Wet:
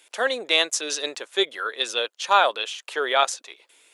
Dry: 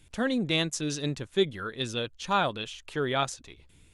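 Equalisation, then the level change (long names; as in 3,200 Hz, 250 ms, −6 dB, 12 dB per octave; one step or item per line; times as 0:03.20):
high-pass filter 480 Hz 24 dB per octave
+8.5 dB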